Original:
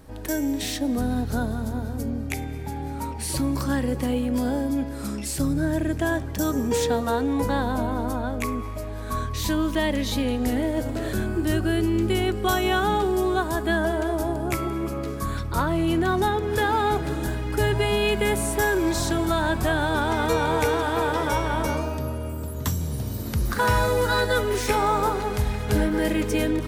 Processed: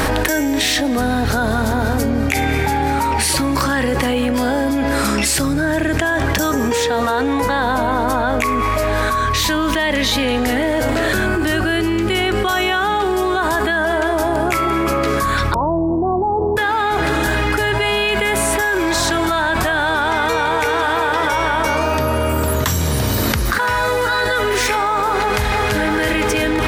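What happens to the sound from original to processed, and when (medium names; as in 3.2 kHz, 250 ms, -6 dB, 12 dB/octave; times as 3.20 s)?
15.54–16.57 s: steep low-pass 1 kHz 72 dB/octave
25.18–25.78 s: echo throw 330 ms, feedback 75%, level -4 dB
whole clip: FFT filter 180 Hz 0 dB, 1.8 kHz +14 dB, 11 kHz +5 dB; level flattener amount 100%; trim -8 dB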